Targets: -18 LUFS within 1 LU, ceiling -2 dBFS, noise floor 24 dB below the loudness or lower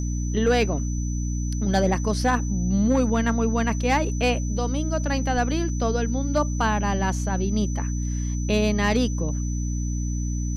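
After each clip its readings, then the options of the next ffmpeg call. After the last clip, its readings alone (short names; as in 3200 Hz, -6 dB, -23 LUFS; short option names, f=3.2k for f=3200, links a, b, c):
hum 60 Hz; harmonics up to 300 Hz; hum level -24 dBFS; steady tone 6000 Hz; tone level -38 dBFS; loudness -24.0 LUFS; peak -10.5 dBFS; loudness target -18.0 LUFS
-> -af "bandreject=f=60:t=h:w=4,bandreject=f=120:t=h:w=4,bandreject=f=180:t=h:w=4,bandreject=f=240:t=h:w=4,bandreject=f=300:t=h:w=4"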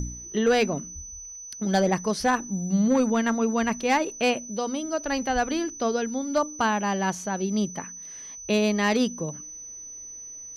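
hum none; steady tone 6000 Hz; tone level -38 dBFS
-> -af "bandreject=f=6k:w=30"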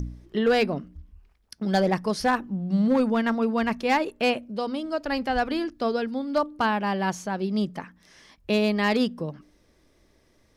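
steady tone none; loudness -25.5 LUFS; peak -12.5 dBFS; loudness target -18.0 LUFS
-> -af "volume=7.5dB"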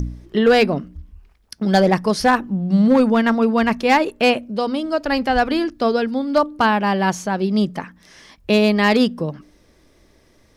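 loudness -18.0 LUFS; peak -5.0 dBFS; noise floor -56 dBFS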